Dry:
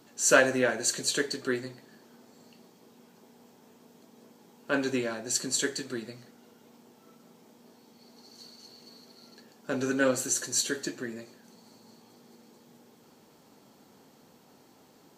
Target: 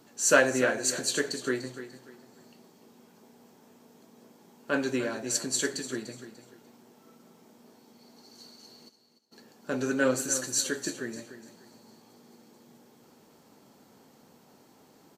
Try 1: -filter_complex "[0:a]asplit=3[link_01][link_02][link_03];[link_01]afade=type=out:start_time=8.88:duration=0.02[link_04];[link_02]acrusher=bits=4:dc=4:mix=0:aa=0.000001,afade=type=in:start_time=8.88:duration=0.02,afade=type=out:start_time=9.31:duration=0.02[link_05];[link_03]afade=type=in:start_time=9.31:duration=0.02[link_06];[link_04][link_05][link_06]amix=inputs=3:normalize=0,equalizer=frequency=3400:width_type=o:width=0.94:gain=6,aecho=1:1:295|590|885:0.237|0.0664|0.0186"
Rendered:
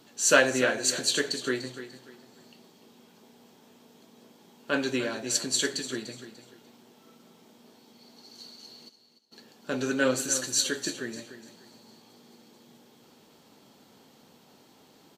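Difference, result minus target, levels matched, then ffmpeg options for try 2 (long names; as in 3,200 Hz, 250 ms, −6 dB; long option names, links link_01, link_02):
4,000 Hz band +4.0 dB
-filter_complex "[0:a]asplit=3[link_01][link_02][link_03];[link_01]afade=type=out:start_time=8.88:duration=0.02[link_04];[link_02]acrusher=bits=4:dc=4:mix=0:aa=0.000001,afade=type=in:start_time=8.88:duration=0.02,afade=type=out:start_time=9.31:duration=0.02[link_05];[link_03]afade=type=in:start_time=9.31:duration=0.02[link_06];[link_04][link_05][link_06]amix=inputs=3:normalize=0,equalizer=frequency=3400:width_type=o:width=0.94:gain=-2,aecho=1:1:295|590|885:0.237|0.0664|0.0186"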